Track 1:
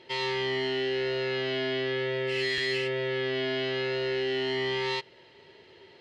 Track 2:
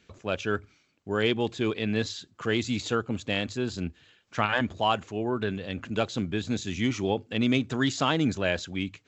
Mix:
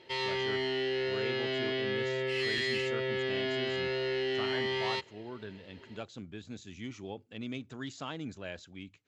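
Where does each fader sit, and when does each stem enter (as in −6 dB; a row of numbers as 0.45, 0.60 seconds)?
−3.0, −15.0 decibels; 0.00, 0.00 seconds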